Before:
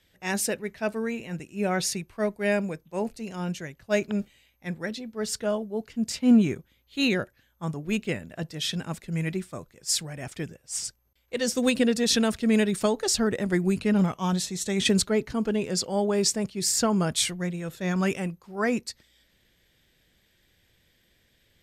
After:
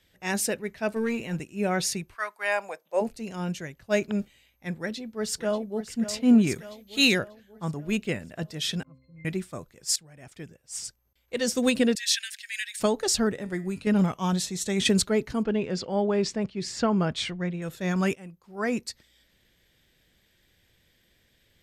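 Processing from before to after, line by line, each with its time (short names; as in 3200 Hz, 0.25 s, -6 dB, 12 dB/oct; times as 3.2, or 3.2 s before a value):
0.96–1.44 sample leveller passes 1
2.14–3 resonant high-pass 1500 Hz -> 520 Hz, resonance Q 3
4.78–5.92 echo throw 0.59 s, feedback 55%, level -11.5 dB
6.47–7.19 high shelf 2500 Hz +11 dB
8.83–9.25 octave resonator C, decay 0.47 s
9.96–11.37 fade in, from -18.5 dB
11.95–12.8 steep high-pass 1600 Hz 96 dB/oct
13.32–13.87 resonator 140 Hz, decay 0.39 s
15.43–17.62 LPF 3500 Hz
18.15–18.86 fade in, from -19.5 dB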